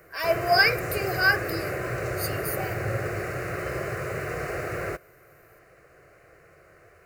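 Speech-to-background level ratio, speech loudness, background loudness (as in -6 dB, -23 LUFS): 6.0 dB, -25.0 LUFS, -31.0 LUFS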